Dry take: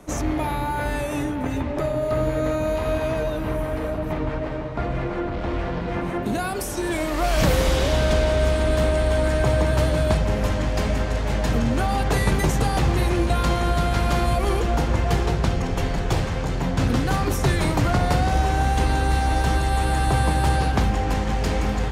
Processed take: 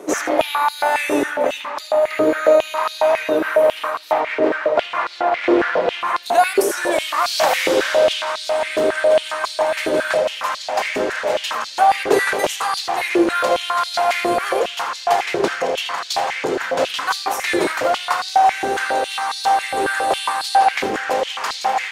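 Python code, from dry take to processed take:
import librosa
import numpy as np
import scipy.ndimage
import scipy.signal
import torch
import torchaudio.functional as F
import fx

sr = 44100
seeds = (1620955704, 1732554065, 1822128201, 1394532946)

p1 = fx.rider(x, sr, range_db=10, speed_s=2.0)
p2 = p1 + fx.echo_single(p1, sr, ms=80, db=-12.0, dry=0)
p3 = fx.filter_held_highpass(p2, sr, hz=7.3, low_hz=390.0, high_hz=4200.0)
y = F.gain(torch.from_numpy(p3), 3.5).numpy()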